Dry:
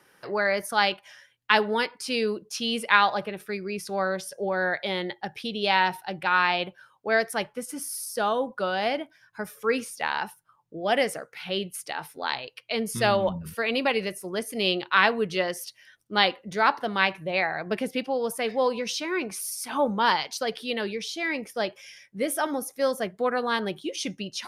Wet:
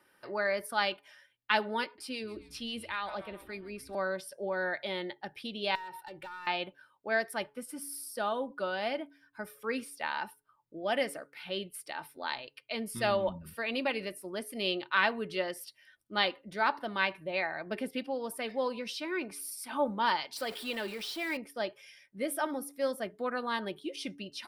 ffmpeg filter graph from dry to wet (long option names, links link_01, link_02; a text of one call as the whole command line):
ffmpeg -i in.wav -filter_complex "[0:a]asettb=1/sr,asplit=3[link_01][link_02][link_03];[link_01]atrim=end=1.844[link_04];[link_02]atrim=start=1.84:end=3.95,asetpts=PTS-STARTPTS,afade=type=in:duration=0.004:curve=qsin,afade=type=out:start_time=2.106:duration=0.004:curve=qsin,acrossover=split=550[link_05][link_06];[link_05]aeval=exprs='val(0)*(1-0.5/2+0.5/2*cos(2*PI*7.4*n/s))':channel_layout=same[link_07];[link_06]aeval=exprs='val(0)*(1-0.5/2-0.5/2*cos(2*PI*7.4*n/s))':channel_layout=same[link_08];[link_07][link_08]amix=inputs=2:normalize=0,asplit=6[link_09][link_10][link_11][link_12][link_13][link_14];[link_10]adelay=137,afreqshift=-140,volume=-20dB[link_15];[link_11]adelay=274,afreqshift=-280,volume=-24.4dB[link_16];[link_12]adelay=411,afreqshift=-420,volume=-28.9dB[link_17];[link_13]adelay=548,afreqshift=-560,volume=-33.3dB[link_18];[link_14]adelay=685,afreqshift=-700,volume=-37.7dB[link_19];[link_09][link_15][link_16][link_17][link_18][link_19]amix=inputs=6:normalize=0,atrim=end_sample=93051,acompressor=threshold=-26dB:ratio=2.5:attack=3.2:release=140:knee=1:detection=peak[link_20];[link_03]atrim=start=3.946[link_21];[link_04][link_20]acrossfade=duration=0.004:curve1=hsin:curve2=qsin[link_22];[link_22][link_21]acrossfade=duration=0.004:curve1=qsin:curve2=hsin,asettb=1/sr,asplit=3[link_23][link_24][link_25];[link_23]atrim=end=5.754[link_26];[link_24]atrim=start=5.75:end=6.47,asetpts=PTS-STARTPTS,afade=type=in:duration=0.004:curve=qsin,afade=type=out:start_time=0.716:duration=0.004:curve=qsin,aecho=1:1:2.2:0.66,atrim=end_sample=31752,acompressor=threshold=-33dB:ratio=8:attack=3.2:release=140:knee=1:detection=peak,asoftclip=type=hard:threshold=-32dB[link_27];[link_25]atrim=start=6.466[link_28];[link_26][link_27]acrossfade=duration=0.004:curve1=hsin:curve2=qsin[link_29];[link_29][link_28]acrossfade=duration=0.004:curve1=qsin:curve2=hsin,asettb=1/sr,asplit=3[link_30][link_31][link_32];[link_30]atrim=end=20.364[link_33];[link_31]atrim=start=20.36:end=21.37,asetpts=PTS-STARTPTS,afade=type=in:duration=0.004:curve=qsin,afade=type=out:start_time=1.006:duration=0.004:curve=qsin,aeval=exprs='val(0)+0.5*0.0224*sgn(val(0))':channel_layout=same,lowshelf=frequency=140:gain=-11[link_34];[link_32]atrim=start=21.366[link_35];[link_33][link_34]acrossfade=duration=0.004:curve1=hsin:curve2=qsin[link_36];[link_36][link_35]acrossfade=duration=0.004:curve1=qsin:curve2=hsin,equalizer=frequency=6400:width=5.2:gain=-12.5,aecho=1:1:3.3:0.35,bandreject=frequency=141.6:width_type=h:width=4,bandreject=frequency=283.2:width_type=h:width=4,bandreject=frequency=424.8:width_type=h:width=4,volume=-7.5dB" out.wav